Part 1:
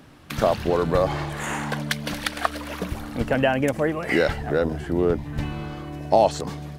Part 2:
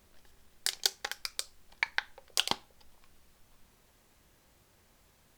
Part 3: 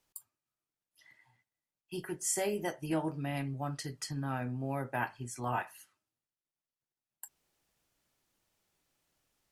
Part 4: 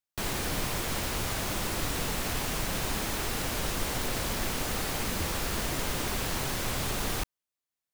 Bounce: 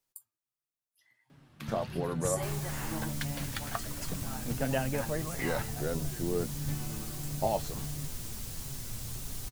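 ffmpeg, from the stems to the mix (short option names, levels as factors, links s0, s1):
-filter_complex "[0:a]equalizer=f=160:w=2.1:g=9,adelay=1300,volume=0.355[s0];[2:a]crystalizer=i=1:c=0,volume=0.596[s1];[3:a]bass=f=250:g=14,treble=f=4000:g=14,adelay=2250,volume=0.168[s2];[s0][s1][s2]amix=inputs=3:normalize=0,flanger=delay=7.2:depth=1.8:regen=50:speed=1.5:shape=sinusoidal"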